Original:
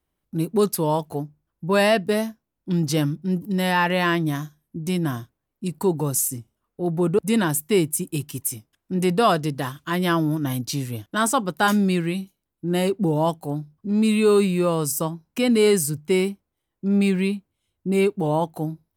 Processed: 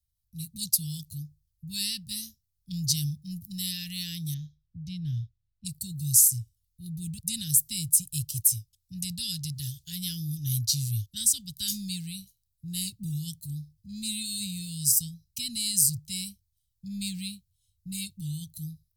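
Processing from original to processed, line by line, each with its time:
4.34–5.65 s: distance through air 290 m
whole clip: level rider gain up to 6 dB; elliptic band-stop 110–4300 Hz, stop band 60 dB

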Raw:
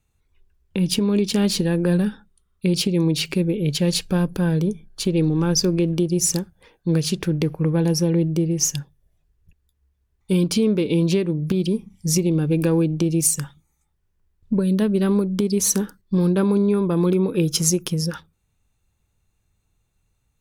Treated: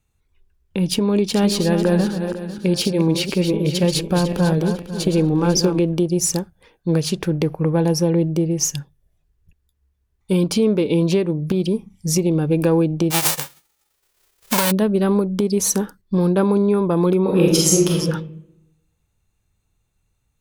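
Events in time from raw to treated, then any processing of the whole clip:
1.09–5.79 s: backward echo that repeats 249 ms, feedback 57%, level -7.5 dB
13.10–14.70 s: formants flattened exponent 0.1
17.21–17.99 s: reverb throw, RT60 0.95 s, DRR -3.5 dB
whole clip: dynamic bell 750 Hz, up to +8 dB, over -38 dBFS, Q 0.98

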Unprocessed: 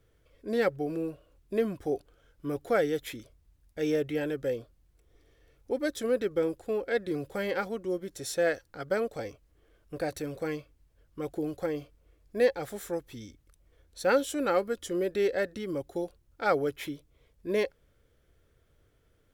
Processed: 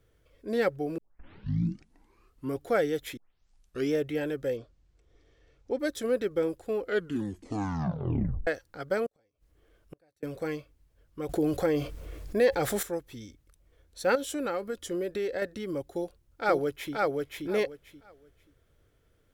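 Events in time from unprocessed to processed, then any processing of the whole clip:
0.98 s: tape start 1.62 s
3.17 s: tape start 0.75 s
4.57–5.79 s: low-pass 7.3 kHz 24 dB/octave
6.77 s: tape stop 1.70 s
9.06–10.23 s: inverted gate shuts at -33 dBFS, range -35 dB
11.29–12.83 s: level flattener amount 50%
14.15–15.42 s: compression, threshold -27 dBFS
15.93–16.94 s: echo throw 530 ms, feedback 20%, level -2 dB

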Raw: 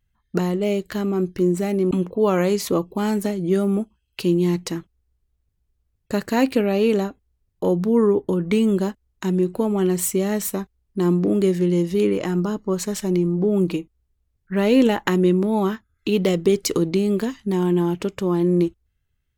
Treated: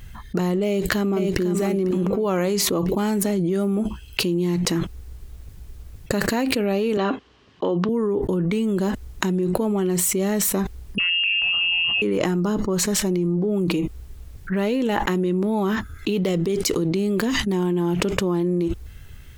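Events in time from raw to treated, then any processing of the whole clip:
0.66–1.47 s: echo throw 500 ms, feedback 25%, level -4 dB
6.97–7.89 s: cabinet simulation 250–5200 Hz, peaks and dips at 260 Hz +4 dB, 1.1 kHz +8 dB, 1.7 kHz +4 dB, 3 kHz +9 dB
10.98–12.02 s: frequency inversion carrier 3 kHz
whole clip: level flattener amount 100%; trim -9 dB

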